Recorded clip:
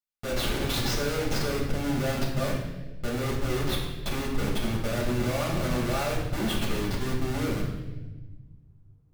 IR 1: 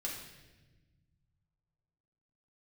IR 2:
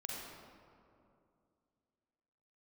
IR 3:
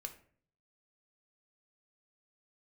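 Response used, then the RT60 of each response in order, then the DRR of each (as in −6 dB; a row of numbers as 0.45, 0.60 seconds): 1; 1.2, 2.5, 0.50 seconds; −3.5, −4.0, 5.0 decibels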